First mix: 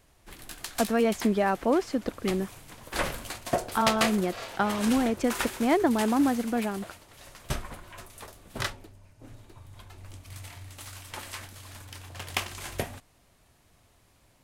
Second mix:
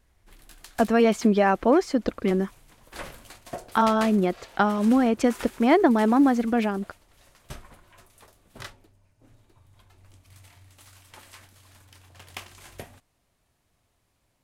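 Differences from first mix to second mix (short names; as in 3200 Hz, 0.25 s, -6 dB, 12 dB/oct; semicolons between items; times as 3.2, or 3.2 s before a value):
speech +5.0 dB; background -9.0 dB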